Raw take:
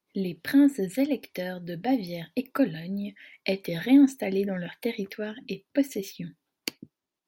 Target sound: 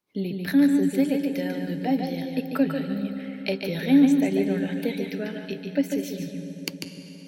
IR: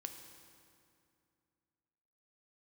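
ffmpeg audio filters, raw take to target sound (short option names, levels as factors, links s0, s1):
-filter_complex "[0:a]equalizer=f=110:t=o:w=1.2:g=3,asplit=2[s0][s1];[1:a]atrim=start_sample=2205,asetrate=23814,aresample=44100,adelay=145[s2];[s1][s2]afir=irnorm=-1:irlink=0,volume=0.631[s3];[s0][s3]amix=inputs=2:normalize=0"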